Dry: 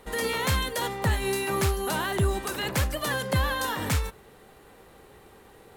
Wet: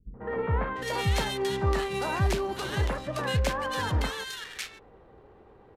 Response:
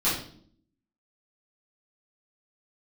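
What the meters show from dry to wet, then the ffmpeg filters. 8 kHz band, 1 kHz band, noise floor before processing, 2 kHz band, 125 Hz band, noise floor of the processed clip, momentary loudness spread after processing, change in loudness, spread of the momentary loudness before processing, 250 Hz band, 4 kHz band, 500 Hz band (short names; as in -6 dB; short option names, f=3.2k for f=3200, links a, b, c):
-7.0 dB, -1.0 dB, -53 dBFS, -3.0 dB, -0.5 dB, -55 dBFS, 8 LU, -2.0 dB, 3 LU, -2.0 dB, -2.5 dB, -0.5 dB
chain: -filter_complex "[0:a]adynamicsmooth=sensitivity=7.5:basefreq=1.3k,acrossover=split=200|1700[a][b][c];[b]adelay=140[d];[c]adelay=690[e];[a][d][e]amix=inputs=3:normalize=0,aresample=32000,aresample=44100"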